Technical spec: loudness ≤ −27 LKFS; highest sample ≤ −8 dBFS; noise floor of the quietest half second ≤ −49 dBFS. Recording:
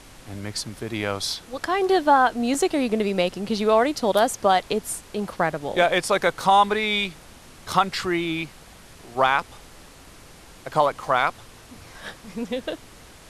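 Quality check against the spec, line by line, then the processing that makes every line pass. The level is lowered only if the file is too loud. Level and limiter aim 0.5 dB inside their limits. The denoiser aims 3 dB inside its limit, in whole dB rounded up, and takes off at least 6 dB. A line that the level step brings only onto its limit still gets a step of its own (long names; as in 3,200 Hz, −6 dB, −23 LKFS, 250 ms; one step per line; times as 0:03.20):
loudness −22.5 LKFS: out of spec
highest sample −5.0 dBFS: out of spec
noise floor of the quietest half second −46 dBFS: out of spec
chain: level −5 dB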